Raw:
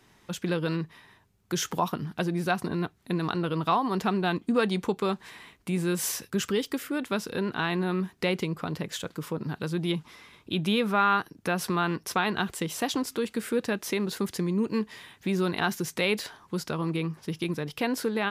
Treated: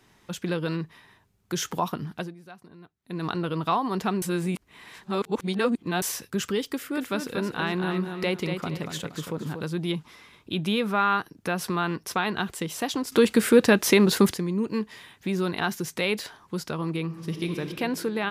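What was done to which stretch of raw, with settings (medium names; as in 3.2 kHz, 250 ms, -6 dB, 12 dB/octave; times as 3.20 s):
2.12–3.26 s: dip -19.5 dB, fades 0.23 s
4.22–6.02 s: reverse
6.71–9.64 s: feedback delay 236 ms, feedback 29%, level -6.5 dB
13.12–14.34 s: gain +10.5 dB
17.04–17.59 s: reverb throw, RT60 2.6 s, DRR 3.5 dB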